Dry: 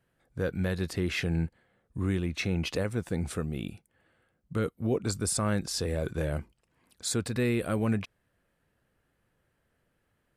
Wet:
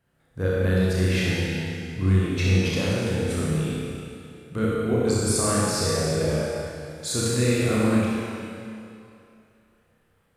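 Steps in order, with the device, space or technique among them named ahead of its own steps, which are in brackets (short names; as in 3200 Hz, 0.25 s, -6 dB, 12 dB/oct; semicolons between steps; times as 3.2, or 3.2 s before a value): tunnel (flutter echo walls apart 5.5 m, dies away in 0.49 s; reverb RT60 2.6 s, pre-delay 37 ms, DRR -4 dB)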